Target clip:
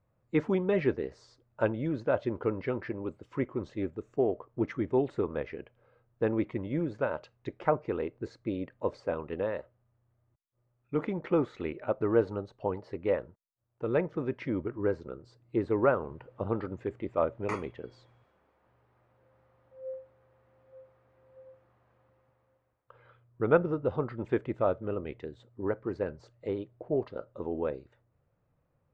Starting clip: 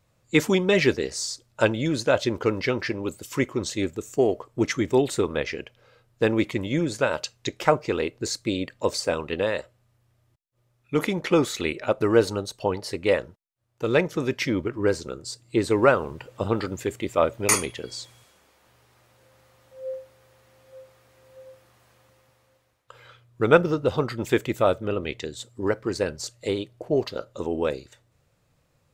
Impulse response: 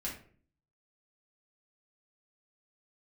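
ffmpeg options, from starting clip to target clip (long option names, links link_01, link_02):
-af "lowpass=1400,volume=-6.5dB"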